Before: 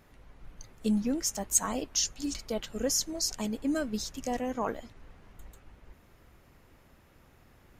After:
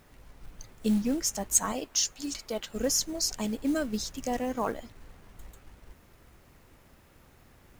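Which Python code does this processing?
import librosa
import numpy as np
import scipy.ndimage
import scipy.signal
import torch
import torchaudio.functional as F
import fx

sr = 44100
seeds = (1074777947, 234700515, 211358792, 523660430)

y = fx.low_shelf(x, sr, hz=220.0, db=-9.5, at=(1.72, 2.74))
y = fx.quant_companded(y, sr, bits=6)
y = F.gain(torch.from_numpy(y), 1.5).numpy()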